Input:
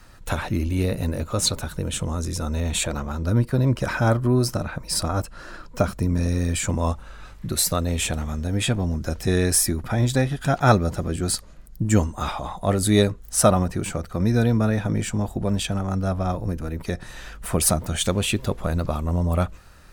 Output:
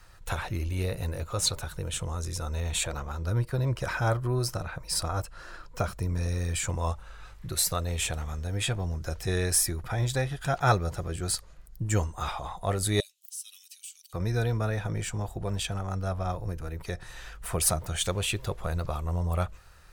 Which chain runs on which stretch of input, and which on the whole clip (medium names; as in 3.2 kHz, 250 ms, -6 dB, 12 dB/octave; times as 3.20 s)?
13.00–14.13 s: elliptic high-pass 2.9 kHz, stop band 80 dB + treble shelf 10 kHz +9 dB + compression 3:1, threshold -36 dBFS
whole clip: peaking EQ 240 Hz -13.5 dB 0.75 oct; band-stop 600 Hz, Q 18; trim -4.5 dB